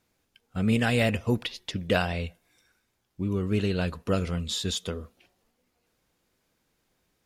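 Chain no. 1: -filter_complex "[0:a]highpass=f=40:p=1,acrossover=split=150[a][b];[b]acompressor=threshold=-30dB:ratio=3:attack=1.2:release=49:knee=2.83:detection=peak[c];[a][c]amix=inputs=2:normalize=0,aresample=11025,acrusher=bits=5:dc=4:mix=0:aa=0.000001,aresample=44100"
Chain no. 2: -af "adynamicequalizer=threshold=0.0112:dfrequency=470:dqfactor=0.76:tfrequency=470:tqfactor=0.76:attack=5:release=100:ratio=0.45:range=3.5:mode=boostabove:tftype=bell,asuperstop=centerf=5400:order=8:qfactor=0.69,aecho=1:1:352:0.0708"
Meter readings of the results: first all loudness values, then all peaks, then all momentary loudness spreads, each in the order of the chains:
-31.0, -25.0 LUFS; -14.5, -7.0 dBFS; 11, 14 LU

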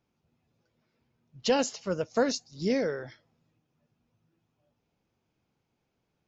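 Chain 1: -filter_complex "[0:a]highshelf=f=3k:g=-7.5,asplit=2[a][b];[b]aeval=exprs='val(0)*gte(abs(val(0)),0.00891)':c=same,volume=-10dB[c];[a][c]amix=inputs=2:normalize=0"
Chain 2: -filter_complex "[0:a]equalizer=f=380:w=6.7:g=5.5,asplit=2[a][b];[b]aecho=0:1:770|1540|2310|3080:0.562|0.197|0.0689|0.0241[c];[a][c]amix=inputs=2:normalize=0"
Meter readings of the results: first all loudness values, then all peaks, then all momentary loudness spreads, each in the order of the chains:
-28.0, -30.0 LUFS; -13.0, -13.5 dBFS; 8, 17 LU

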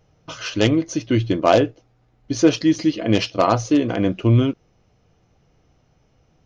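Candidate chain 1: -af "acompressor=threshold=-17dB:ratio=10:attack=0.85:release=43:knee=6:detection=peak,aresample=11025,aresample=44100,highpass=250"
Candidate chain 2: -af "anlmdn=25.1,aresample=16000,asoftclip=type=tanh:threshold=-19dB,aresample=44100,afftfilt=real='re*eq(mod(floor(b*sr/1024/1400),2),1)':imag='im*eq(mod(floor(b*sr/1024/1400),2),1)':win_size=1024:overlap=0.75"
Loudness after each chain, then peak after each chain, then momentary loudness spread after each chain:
-27.0, -37.0 LUFS; -10.0, -17.5 dBFS; 6, 13 LU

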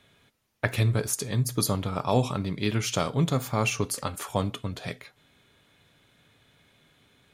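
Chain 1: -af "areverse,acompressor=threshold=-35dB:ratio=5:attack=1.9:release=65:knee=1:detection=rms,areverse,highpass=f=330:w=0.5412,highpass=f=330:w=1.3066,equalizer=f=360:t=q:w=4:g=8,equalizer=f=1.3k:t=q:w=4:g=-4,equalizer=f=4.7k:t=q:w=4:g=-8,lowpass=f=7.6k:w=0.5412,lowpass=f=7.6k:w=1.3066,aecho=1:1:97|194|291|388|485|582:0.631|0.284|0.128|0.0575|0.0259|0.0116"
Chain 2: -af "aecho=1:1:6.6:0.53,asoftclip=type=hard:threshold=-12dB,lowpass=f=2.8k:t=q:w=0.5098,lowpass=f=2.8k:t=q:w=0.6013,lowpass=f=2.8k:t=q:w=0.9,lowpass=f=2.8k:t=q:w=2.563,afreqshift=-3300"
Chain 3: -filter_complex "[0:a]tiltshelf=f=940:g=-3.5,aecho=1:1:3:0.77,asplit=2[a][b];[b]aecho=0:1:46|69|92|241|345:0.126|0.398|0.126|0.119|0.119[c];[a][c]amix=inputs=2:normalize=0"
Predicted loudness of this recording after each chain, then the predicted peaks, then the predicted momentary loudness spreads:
-41.5, -23.5, -25.5 LUFS; -26.5, -9.5, -5.5 dBFS; 22, 11, 11 LU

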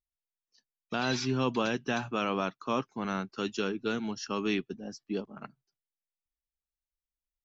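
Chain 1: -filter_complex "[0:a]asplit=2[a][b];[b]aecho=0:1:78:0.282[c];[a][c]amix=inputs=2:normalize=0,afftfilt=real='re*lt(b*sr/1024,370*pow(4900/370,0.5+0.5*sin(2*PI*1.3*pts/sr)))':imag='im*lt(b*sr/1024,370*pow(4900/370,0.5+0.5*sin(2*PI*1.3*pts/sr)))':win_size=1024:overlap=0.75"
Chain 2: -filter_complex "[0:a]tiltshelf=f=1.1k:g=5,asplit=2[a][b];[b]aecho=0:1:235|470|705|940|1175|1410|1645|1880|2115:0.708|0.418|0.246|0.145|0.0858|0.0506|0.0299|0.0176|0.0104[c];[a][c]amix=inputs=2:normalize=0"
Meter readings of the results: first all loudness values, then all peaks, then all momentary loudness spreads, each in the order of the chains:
-33.5, -27.5 LUFS; -17.0, -11.0 dBFS; 9, 12 LU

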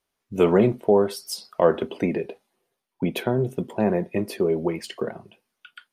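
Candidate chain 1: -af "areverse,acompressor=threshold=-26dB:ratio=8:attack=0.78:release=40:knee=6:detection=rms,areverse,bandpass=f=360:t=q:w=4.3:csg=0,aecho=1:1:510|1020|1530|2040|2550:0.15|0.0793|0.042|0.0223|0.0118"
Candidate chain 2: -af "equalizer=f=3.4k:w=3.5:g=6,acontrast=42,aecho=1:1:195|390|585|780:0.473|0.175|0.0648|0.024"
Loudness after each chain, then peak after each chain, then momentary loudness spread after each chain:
-39.0, -18.0 LUFS; -25.5, -1.5 dBFS; 17, 12 LU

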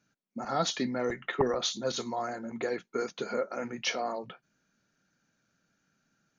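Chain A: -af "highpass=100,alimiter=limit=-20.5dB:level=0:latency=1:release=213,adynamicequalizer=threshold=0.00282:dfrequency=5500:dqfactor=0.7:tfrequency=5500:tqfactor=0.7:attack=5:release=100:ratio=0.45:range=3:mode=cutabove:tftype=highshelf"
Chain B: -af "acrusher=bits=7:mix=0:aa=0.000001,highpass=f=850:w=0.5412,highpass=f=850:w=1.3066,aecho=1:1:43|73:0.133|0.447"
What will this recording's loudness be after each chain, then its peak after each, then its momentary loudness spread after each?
-34.0, -35.5 LUFS; -20.5, -16.5 dBFS; 7, 10 LU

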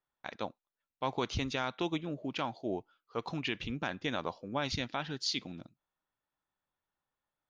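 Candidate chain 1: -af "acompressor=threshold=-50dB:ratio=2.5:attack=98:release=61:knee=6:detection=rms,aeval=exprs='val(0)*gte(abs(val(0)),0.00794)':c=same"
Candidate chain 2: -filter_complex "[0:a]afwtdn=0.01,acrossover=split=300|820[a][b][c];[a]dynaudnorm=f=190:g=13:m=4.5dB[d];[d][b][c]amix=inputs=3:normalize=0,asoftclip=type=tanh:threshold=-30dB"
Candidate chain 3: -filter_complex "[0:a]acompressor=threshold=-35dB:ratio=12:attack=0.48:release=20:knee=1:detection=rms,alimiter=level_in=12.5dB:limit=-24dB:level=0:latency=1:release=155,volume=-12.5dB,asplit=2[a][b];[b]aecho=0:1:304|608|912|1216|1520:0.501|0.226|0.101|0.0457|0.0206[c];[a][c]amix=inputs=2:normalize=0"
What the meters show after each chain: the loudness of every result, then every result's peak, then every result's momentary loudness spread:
-45.5, -39.5, -46.0 LUFS; -24.5, -30.0, -33.0 dBFS; 7, 9, 13 LU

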